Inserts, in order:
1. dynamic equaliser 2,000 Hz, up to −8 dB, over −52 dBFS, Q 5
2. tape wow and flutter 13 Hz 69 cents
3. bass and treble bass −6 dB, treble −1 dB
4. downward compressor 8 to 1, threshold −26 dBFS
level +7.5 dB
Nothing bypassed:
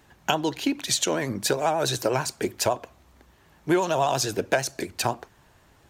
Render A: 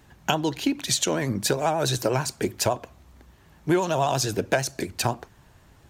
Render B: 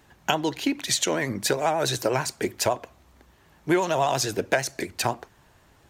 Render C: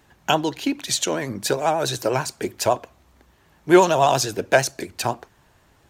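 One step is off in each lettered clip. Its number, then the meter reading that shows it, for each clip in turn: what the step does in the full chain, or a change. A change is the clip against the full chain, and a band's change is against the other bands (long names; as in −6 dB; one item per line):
3, 125 Hz band +5.0 dB
1, 2 kHz band +1.5 dB
4, average gain reduction 2.0 dB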